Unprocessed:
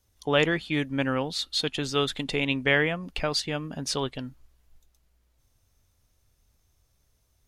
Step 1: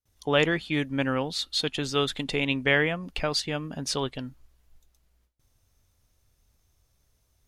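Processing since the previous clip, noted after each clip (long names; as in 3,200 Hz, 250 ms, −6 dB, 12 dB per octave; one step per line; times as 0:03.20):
noise gate with hold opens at −59 dBFS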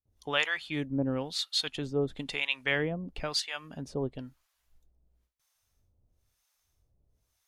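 two-band tremolo in antiphase 1 Hz, depth 100%, crossover 740 Hz
level −1 dB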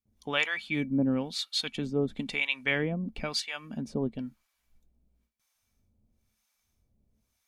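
hollow resonant body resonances 220/2,300 Hz, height 16 dB, ringing for 90 ms
level −1 dB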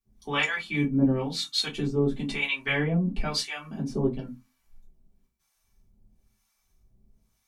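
convolution reverb RT60 0.25 s, pre-delay 3 ms, DRR −5.5 dB
level −4 dB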